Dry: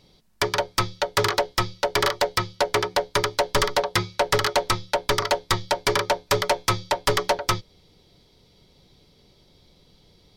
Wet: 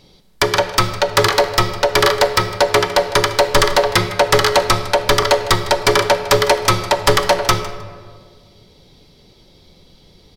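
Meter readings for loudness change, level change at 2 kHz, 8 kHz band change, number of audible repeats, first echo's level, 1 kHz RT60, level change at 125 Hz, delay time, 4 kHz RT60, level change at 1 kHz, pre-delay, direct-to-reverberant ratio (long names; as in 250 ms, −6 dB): +8.5 dB, +8.5 dB, +8.0 dB, 1, −16.5 dB, 1.6 s, +8.0 dB, 156 ms, 0.95 s, +8.0 dB, 3 ms, 8.0 dB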